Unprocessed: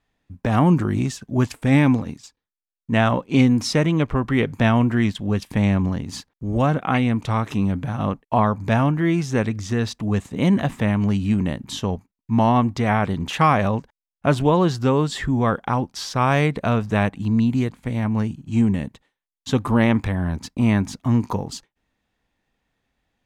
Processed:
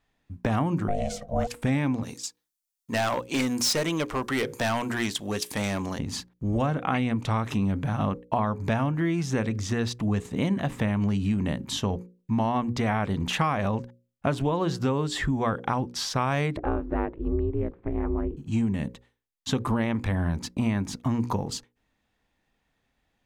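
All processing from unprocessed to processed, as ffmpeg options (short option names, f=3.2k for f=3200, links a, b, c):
-filter_complex "[0:a]asettb=1/sr,asplit=3[a][b][c];[a]atrim=end=0.884[d];[b]atrim=start=0.88:end=1.47,asetpts=PTS-STARTPTS,afade=t=in:d=0.004:c=qsin,afade=t=out:st=0.586:d=0.004:c=qsin,equalizer=f=350:t=o:w=0.27:g=14.5,bandreject=f=47.36:t=h:w=4,bandreject=f=94.72:t=h:w=4,bandreject=f=142.08:t=h:w=4,bandreject=f=189.44:t=h:w=4,bandreject=f=236.8:t=h:w=4,bandreject=f=284.16:t=h:w=4,bandreject=f=331.52:t=h:w=4,bandreject=f=378.88:t=h:w=4,bandreject=f=426.24:t=h:w=4,bandreject=f=473.6:t=h:w=4,bandreject=f=520.96:t=h:w=4,bandreject=f=568.32:t=h:w=4,bandreject=f=615.68:t=h:w=4,bandreject=f=663.04:t=h:w=4,bandreject=f=710.4:t=h:w=4,bandreject=f=757.76:t=h:w=4,bandreject=f=805.12:t=h:w=4,bandreject=f=852.48:t=h:w=4,bandreject=f=899.84:t=h:w=4,bandreject=f=947.2:t=h:w=4,bandreject=f=994.56:t=h:w=4,bandreject=f=1.04192k:t=h:w=4,bandreject=f=1.08928k:t=h:w=4,bandreject=f=1.13664k:t=h:w=4,bandreject=f=1.184k:t=h:w=4,bandreject=f=1.23136k:t=h:w=4,aeval=exprs='val(0)*sin(2*PI*350*n/s)':c=same[e];[c]atrim=start=1.466[f];[d][e]acrossfade=d=0.004:c1=hsin:c2=qsin[g];[g][f]acrossfade=d=0.004:c1=qsin:c2=hsin,asettb=1/sr,asplit=3[h][i][j];[h]atrim=end=2.034[k];[i]atrim=start=2.03:end=5.99,asetpts=PTS-STARTPTS,afade=t=in:d=0.004:c=qsin,afade=t=out:st=3.956:d=0.004:c=qsin,bass=f=250:g=-14,treble=f=4k:g=12,asoftclip=type=hard:threshold=-19.5dB[l];[j]atrim=start=5.986[m];[k][l]acrossfade=d=0.004:c1=hsin:c2=qsin[n];[n][m]acrossfade=d=0.004:c1=qsin:c2=hsin,asettb=1/sr,asplit=3[o][p][q];[o]atrim=end=16.574[r];[p]atrim=start=16.57:end=18.37,asetpts=PTS-STARTPTS,afade=t=in:d=0.004:c=qsin,afade=t=out:st=1.796:d=0.004:c=qsin,lowpass=1.4k,aemphasis=mode=reproduction:type=75kf,aeval=exprs='val(0)*sin(2*PI*150*n/s)':c=same[s];[q]atrim=start=18.366[t];[r][s]acrossfade=d=0.004:c1=hsin:c2=qsin[u];[u][t]acrossfade=d=0.004:c1=qsin:c2=hsin,bandreject=f=60:t=h:w=6,bandreject=f=120:t=h:w=6,bandreject=f=180:t=h:w=6,bandreject=f=240:t=h:w=6,bandreject=f=300:t=h:w=6,bandreject=f=360:t=h:w=6,bandreject=f=420:t=h:w=6,bandreject=f=480:t=h:w=6,bandreject=f=540:t=h:w=6,acompressor=threshold=-22dB:ratio=6"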